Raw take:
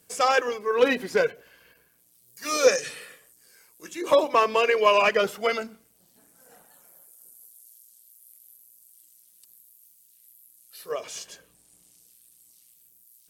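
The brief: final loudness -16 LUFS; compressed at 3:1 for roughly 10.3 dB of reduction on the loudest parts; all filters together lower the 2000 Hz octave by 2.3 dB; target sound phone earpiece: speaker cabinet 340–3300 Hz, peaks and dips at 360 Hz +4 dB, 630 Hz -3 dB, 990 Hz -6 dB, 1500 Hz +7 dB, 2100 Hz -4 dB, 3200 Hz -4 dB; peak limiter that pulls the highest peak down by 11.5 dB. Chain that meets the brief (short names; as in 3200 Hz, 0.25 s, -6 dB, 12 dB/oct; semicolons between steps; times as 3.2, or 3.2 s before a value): bell 2000 Hz -5.5 dB; compressor 3:1, threshold -28 dBFS; limiter -28 dBFS; speaker cabinet 340–3300 Hz, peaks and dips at 360 Hz +4 dB, 630 Hz -3 dB, 990 Hz -6 dB, 1500 Hz +7 dB, 2100 Hz -4 dB, 3200 Hz -4 dB; gain +23.5 dB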